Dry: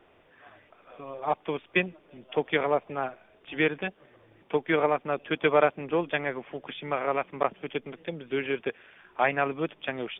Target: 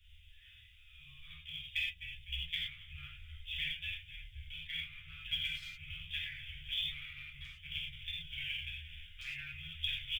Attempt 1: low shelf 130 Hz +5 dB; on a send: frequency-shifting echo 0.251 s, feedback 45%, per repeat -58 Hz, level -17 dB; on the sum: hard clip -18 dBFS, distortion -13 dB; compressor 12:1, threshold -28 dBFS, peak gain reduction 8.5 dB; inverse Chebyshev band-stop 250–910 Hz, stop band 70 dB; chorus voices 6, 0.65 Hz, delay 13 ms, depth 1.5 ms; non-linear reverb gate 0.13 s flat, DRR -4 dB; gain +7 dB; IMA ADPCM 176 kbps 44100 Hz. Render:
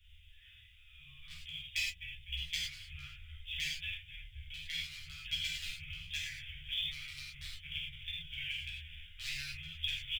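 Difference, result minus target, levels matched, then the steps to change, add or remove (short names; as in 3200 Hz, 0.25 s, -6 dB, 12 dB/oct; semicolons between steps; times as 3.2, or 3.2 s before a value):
hard clip: distortion +21 dB
change: hard clip -11 dBFS, distortion -35 dB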